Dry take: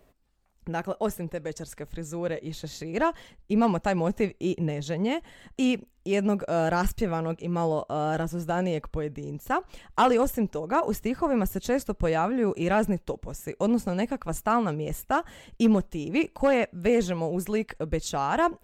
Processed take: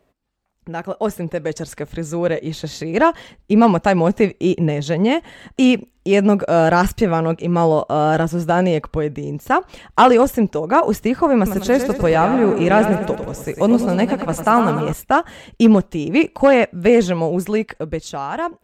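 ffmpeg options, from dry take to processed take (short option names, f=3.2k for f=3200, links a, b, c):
-filter_complex "[0:a]asettb=1/sr,asplit=3[a][b][c];[a]atrim=end=11.364[d];[b]atrim=start=11.36:end=14.93,asetpts=PTS-STARTPTS,afade=t=in:d=0.004:c=qsin,afade=t=out:st=3.566:d=0.004:c=qsin,aecho=1:1:101|202|303|404|505|606|707:0.376|0.218|0.126|0.0733|0.0425|0.0247|0.0143,atrim=end_sample=157437[e];[c]atrim=start=14.926[f];[d][e]acrossfade=d=0.004:c1=hsin:c2=qsin[g];[g][f]acrossfade=d=0.004:c1=qsin:c2=hsin,highpass=f=85:p=1,highshelf=f=7.7k:g=-8.5,dynaudnorm=f=170:g=13:m=13dB"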